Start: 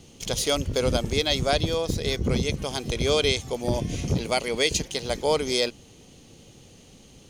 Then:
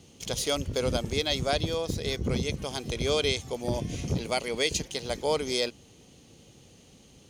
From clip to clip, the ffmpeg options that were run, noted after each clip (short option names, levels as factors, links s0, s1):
-af "highpass=42,volume=0.631"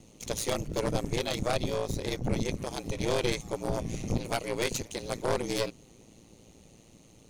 -af "aeval=exprs='val(0)*sin(2*PI*56*n/s)':c=same,equalizer=f=1600:t=o:w=0.33:g=-5,equalizer=f=3150:t=o:w=0.33:g=-8,equalizer=f=5000:t=o:w=0.33:g=-6,aeval=exprs='0.2*(cos(1*acos(clip(val(0)/0.2,-1,1)))-cos(1*PI/2))+0.0891*(cos(4*acos(clip(val(0)/0.2,-1,1)))-cos(4*PI/2))+0.0562*(cos(5*acos(clip(val(0)/0.2,-1,1)))-cos(5*PI/2))':c=same,volume=0.562"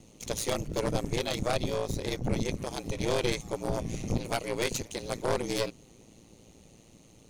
-af anull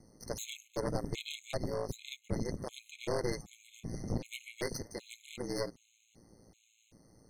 -af "afftfilt=real='re*gt(sin(2*PI*1.3*pts/sr)*(1-2*mod(floor(b*sr/1024/2100),2)),0)':imag='im*gt(sin(2*PI*1.3*pts/sr)*(1-2*mod(floor(b*sr/1024/2100),2)),0)':win_size=1024:overlap=0.75,volume=0.562"